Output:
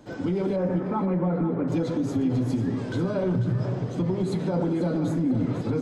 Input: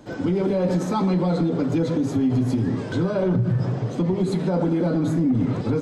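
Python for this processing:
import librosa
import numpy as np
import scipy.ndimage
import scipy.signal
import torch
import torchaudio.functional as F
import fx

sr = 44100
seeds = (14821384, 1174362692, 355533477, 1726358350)

p1 = fx.lowpass(x, sr, hz=2100.0, slope=24, at=(0.56, 1.68))
p2 = p1 + fx.echo_feedback(p1, sr, ms=493, feedback_pct=26, wet_db=-10.5, dry=0)
y = p2 * 10.0 ** (-4.0 / 20.0)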